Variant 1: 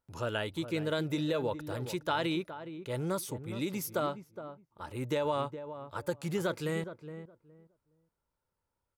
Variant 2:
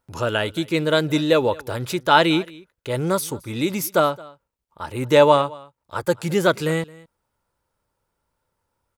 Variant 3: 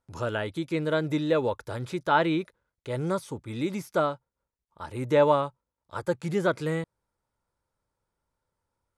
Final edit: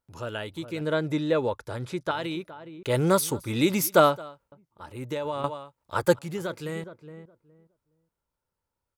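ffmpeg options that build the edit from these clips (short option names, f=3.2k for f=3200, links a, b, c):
-filter_complex "[1:a]asplit=2[a][b];[0:a]asplit=4[c][d][e][f];[c]atrim=end=0.812[g];[2:a]atrim=start=0.808:end=2.112[h];[d]atrim=start=2.108:end=2.832[i];[a]atrim=start=2.828:end=4.522[j];[e]atrim=start=4.518:end=5.442[k];[b]atrim=start=5.438:end=6.192[l];[f]atrim=start=6.188[m];[g][h]acrossfade=d=0.004:c1=hsin:c2=hsin[n];[n][i]acrossfade=d=0.004:c1=hsin:c2=hsin[o];[o][j]acrossfade=d=0.004:c1=hsin:c2=hsin[p];[p][k]acrossfade=d=0.004:c1=hsin:c2=hsin[q];[q][l]acrossfade=d=0.004:c1=hsin:c2=hsin[r];[r][m]acrossfade=d=0.004:c1=hsin:c2=hsin"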